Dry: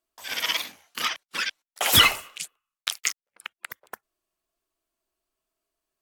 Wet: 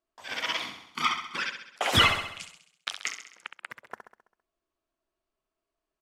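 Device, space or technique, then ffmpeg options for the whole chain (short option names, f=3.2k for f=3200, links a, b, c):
through cloth: -filter_complex "[0:a]asettb=1/sr,asplit=3[a][b][c];[a]atrim=end=0.624[d];[b]atrim=start=0.62:end=1.36,asetpts=PTS-STARTPTS,afade=t=in:d=0.004:c=qsin,afade=t=out:st=0.736:d=0.004:c=qsin,aecho=1:1:0.9:0.99,atrim=end_sample=32634[e];[c]atrim=start=1.356[f];[d][e]acrossfade=d=0.004:c1=hsin:c2=qsin[g];[g][f]acrossfade=d=0.004:c1=qsin:c2=hsin,lowpass=8.2k,highshelf=f=3.1k:g=-11,aecho=1:1:66|132|198|264|330|396|462:0.376|0.207|0.114|0.0625|0.0344|0.0189|0.0104"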